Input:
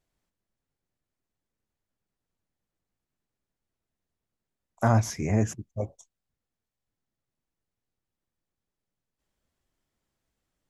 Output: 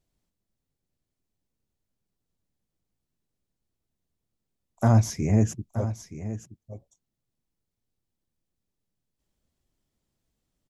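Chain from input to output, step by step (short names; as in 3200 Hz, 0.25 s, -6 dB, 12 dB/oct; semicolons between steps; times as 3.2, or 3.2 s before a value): EQ curve 200 Hz 0 dB, 1600 Hz -9 dB, 4100 Hz -3 dB; echo 0.923 s -12.5 dB; gain +4 dB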